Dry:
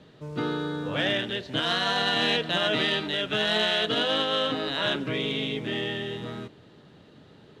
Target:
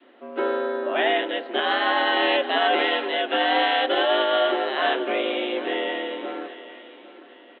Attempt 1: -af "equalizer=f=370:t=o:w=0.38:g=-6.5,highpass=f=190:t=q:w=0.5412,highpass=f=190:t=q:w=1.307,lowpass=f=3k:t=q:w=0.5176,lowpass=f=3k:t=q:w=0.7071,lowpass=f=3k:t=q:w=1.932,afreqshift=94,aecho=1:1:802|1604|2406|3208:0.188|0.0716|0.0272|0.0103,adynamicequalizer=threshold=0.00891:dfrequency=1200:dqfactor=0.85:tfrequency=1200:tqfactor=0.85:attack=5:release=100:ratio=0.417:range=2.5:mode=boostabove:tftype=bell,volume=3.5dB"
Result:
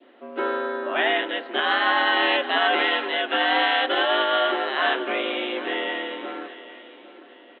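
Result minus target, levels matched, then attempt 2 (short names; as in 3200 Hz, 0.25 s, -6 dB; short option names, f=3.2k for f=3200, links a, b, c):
500 Hz band -3.0 dB
-af "equalizer=f=370:t=o:w=0.38:g=-6.5,highpass=f=190:t=q:w=0.5412,highpass=f=190:t=q:w=1.307,lowpass=f=3k:t=q:w=0.5176,lowpass=f=3k:t=q:w=0.7071,lowpass=f=3k:t=q:w=1.932,afreqshift=94,aecho=1:1:802|1604|2406|3208:0.188|0.0716|0.0272|0.0103,adynamicequalizer=threshold=0.00891:dfrequency=590:dqfactor=0.85:tfrequency=590:tqfactor=0.85:attack=5:release=100:ratio=0.417:range=2.5:mode=boostabove:tftype=bell,volume=3.5dB"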